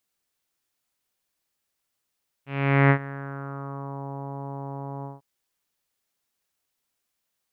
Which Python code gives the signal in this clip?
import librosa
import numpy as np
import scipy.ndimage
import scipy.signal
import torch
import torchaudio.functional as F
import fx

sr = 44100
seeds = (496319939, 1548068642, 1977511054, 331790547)

y = fx.sub_voice(sr, note=49, wave='saw', cutoff_hz=940.0, q=3.0, env_oct=1.5, env_s=1.59, attack_ms=441.0, decay_s=0.08, sustain_db=-19, release_s=0.17, note_s=2.58, slope=24)